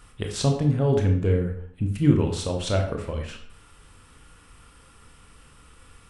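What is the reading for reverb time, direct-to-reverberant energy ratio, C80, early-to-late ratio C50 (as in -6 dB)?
0.60 s, 3.0 dB, 10.5 dB, 6.5 dB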